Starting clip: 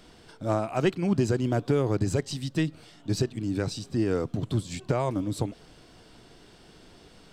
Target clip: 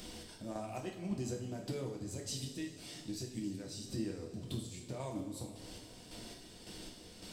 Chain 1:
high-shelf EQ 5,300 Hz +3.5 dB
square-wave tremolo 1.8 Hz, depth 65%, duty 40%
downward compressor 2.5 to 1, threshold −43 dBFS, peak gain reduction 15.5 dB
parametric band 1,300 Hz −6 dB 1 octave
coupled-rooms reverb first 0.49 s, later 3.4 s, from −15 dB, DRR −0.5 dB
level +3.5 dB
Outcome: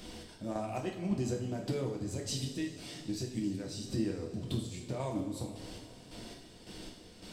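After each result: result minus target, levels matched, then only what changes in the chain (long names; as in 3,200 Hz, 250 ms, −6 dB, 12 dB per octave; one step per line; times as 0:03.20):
downward compressor: peak gain reduction −5.5 dB; 8,000 Hz band −4.0 dB
change: downward compressor 2.5 to 1, threshold −52 dBFS, peak gain reduction 21 dB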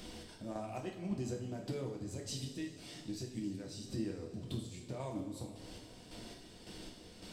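8,000 Hz band −3.0 dB
change: high-shelf EQ 5,300 Hz +10 dB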